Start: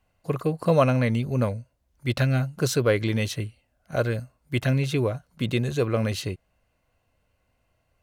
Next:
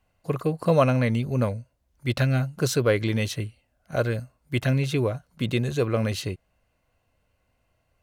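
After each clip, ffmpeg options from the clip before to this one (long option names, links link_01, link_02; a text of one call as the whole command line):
ffmpeg -i in.wav -af anull out.wav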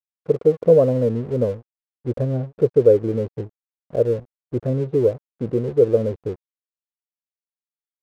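ffmpeg -i in.wav -af "lowpass=frequency=470:width_type=q:width=4.9,aeval=exprs='sgn(val(0))*max(abs(val(0))-0.00891,0)':channel_layout=same,volume=-1dB" out.wav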